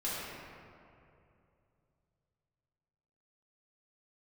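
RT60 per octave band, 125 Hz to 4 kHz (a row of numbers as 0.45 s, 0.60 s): 3.8 s, 2.9 s, 2.8 s, 2.4 s, 2.1 s, 1.3 s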